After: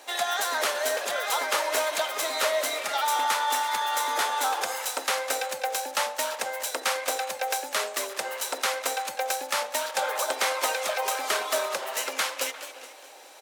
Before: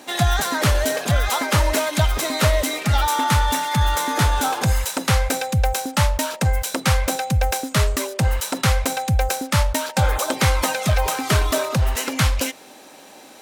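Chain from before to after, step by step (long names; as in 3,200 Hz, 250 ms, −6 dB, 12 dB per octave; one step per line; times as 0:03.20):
high-pass filter 440 Hz 24 dB per octave
far-end echo of a speakerphone 350 ms, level −16 dB
on a send at −19 dB: convolution reverb RT60 0.35 s, pre-delay 47 ms
on the sum: feedback echo with a swinging delay time 209 ms, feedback 48%, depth 193 cents, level −12 dB
level −4.5 dB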